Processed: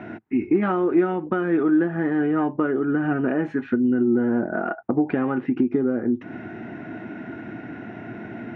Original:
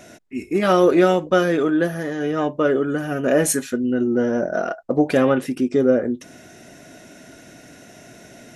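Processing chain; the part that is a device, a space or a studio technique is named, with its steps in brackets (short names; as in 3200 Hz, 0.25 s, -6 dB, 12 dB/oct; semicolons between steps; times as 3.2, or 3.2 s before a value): bass amplifier (compressor 5:1, threshold -29 dBFS, peak gain reduction 16.5 dB; speaker cabinet 79–2300 Hz, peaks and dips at 110 Hz +7 dB, 220 Hz +7 dB, 330 Hz +8 dB, 560 Hz -9 dB, 840 Hz +7 dB, 1400 Hz +3 dB); gain +6 dB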